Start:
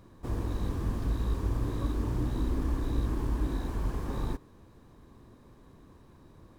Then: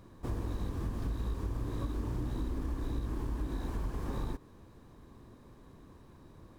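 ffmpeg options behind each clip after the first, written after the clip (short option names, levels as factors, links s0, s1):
-af "acompressor=threshold=0.0282:ratio=6"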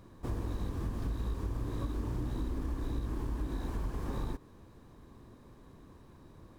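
-af anull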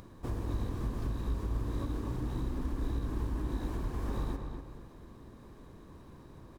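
-filter_complex "[0:a]acompressor=mode=upward:threshold=0.00447:ratio=2.5,asplit=2[s0][s1];[s1]adelay=243,lowpass=f=3400:p=1,volume=0.531,asplit=2[s2][s3];[s3]adelay=243,lowpass=f=3400:p=1,volume=0.36,asplit=2[s4][s5];[s5]adelay=243,lowpass=f=3400:p=1,volume=0.36,asplit=2[s6][s7];[s7]adelay=243,lowpass=f=3400:p=1,volume=0.36[s8];[s0][s2][s4][s6][s8]amix=inputs=5:normalize=0"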